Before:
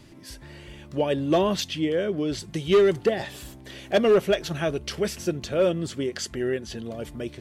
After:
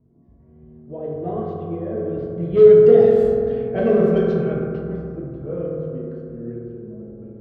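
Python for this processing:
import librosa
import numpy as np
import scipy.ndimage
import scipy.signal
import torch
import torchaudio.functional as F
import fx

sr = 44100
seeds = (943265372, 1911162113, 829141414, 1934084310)

y = fx.doppler_pass(x, sr, speed_mps=23, closest_m=14.0, pass_at_s=3.26)
y = fx.highpass(y, sr, hz=100.0, slope=6)
y = fx.tilt_eq(y, sr, slope=-4.0)
y = fx.rev_fdn(y, sr, rt60_s=2.8, lf_ratio=1.25, hf_ratio=0.3, size_ms=13.0, drr_db=-5.5)
y = fx.env_lowpass(y, sr, base_hz=820.0, full_db=-6.0)
y = y * librosa.db_to_amplitude(-5.0)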